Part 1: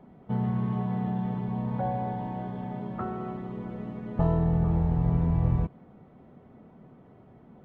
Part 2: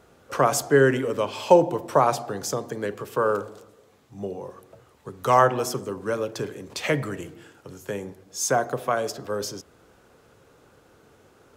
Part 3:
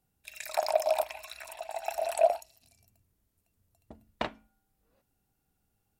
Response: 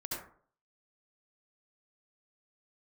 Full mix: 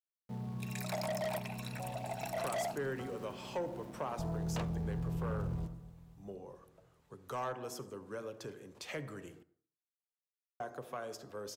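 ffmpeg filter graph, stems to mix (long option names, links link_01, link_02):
-filter_complex "[0:a]lowpass=frequency=1200:width=0.5412,lowpass=frequency=1200:width=1.3066,aeval=exprs='val(0)*gte(abs(val(0)),0.01)':channel_layout=same,volume=-14.5dB,asplit=3[link_01][link_02][link_03];[link_02]volume=-10dB[link_04];[link_03]volume=-17.5dB[link_05];[1:a]acompressor=threshold=-27dB:ratio=1.5,adelay=2050,volume=-14.5dB,asplit=3[link_06][link_07][link_08];[link_06]atrim=end=9.43,asetpts=PTS-STARTPTS,afade=type=out:start_time=9.426:duration=0.004:curve=hsin[link_09];[link_07]atrim=start=9.43:end=10.6,asetpts=PTS-STARTPTS,volume=0[link_10];[link_08]atrim=start=10.6,asetpts=PTS-STARTPTS,afade=type=in:duration=0.004:curve=hsin[link_11];[link_09][link_10][link_11]concat=n=3:v=0:a=1,asplit=2[link_12][link_13];[link_13]volume=-18dB[link_14];[2:a]volume=29.5dB,asoftclip=hard,volume=-29.5dB,adelay=350,volume=-2.5dB[link_15];[3:a]atrim=start_sample=2205[link_16];[link_04][link_14]amix=inputs=2:normalize=0[link_17];[link_17][link_16]afir=irnorm=-1:irlink=0[link_18];[link_05]aecho=0:1:242|484|726|968|1210|1452|1694|1936|2178:1|0.58|0.336|0.195|0.113|0.0656|0.0381|0.0221|0.0128[link_19];[link_01][link_12][link_15][link_18][link_19]amix=inputs=5:normalize=0,asoftclip=type=tanh:threshold=-30dB"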